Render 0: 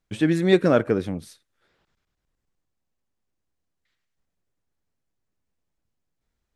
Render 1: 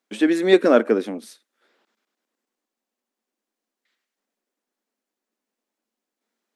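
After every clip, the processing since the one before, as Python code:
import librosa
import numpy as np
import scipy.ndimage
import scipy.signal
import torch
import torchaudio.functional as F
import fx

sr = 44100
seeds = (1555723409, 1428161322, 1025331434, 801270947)

y = scipy.signal.sosfilt(scipy.signal.ellip(4, 1.0, 40, 220.0, 'highpass', fs=sr, output='sos'), x)
y = F.gain(torch.from_numpy(y), 4.0).numpy()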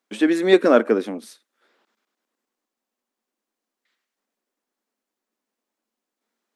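y = fx.peak_eq(x, sr, hz=1100.0, db=2.5, octaves=0.77)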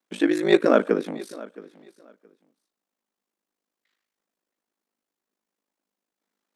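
y = x * np.sin(2.0 * np.pi * 26.0 * np.arange(len(x)) / sr)
y = fx.echo_feedback(y, sr, ms=670, feedback_pct=19, wet_db=-20.0)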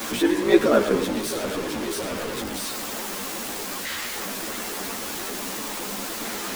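y = x + 0.5 * 10.0 ** (-21.5 / 20.0) * np.sign(x)
y = y + 10.0 ** (-11.5 / 20.0) * np.pad(y, (int(108 * sr / 1000.0), 0))[:len(y)]
y = fx.ensemble(y, sr)
y = F.gain(torch.from_numpy(y), 1.0).numpy()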